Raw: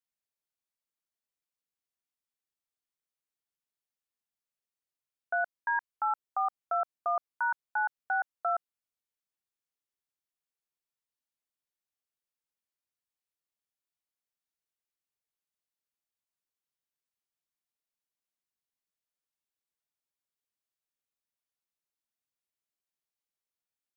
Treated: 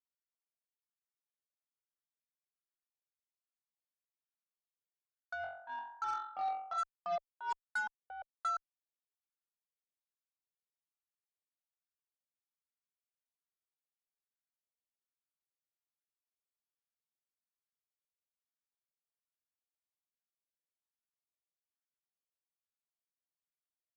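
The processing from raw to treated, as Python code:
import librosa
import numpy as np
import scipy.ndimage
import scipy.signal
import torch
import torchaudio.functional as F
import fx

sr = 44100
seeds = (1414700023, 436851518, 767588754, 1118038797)

y = fx.wah_lfo(x, sr, hz=1.2, low_hz=500.0, high_hz=1500.0, q=4.8)
y = fx.room_flutter(y, sr, wall_m=3.8, rt60_s=0.9, at=(5.41, 6.77), fade=0.02)
y = fx.cheby_harmonics(y, sr, harmonics=(2, 5, 7), levels_db=(-32, -21, -20), full_scale_db=-26.0)
y = y * librosa.db_to_amplitude(-1.5)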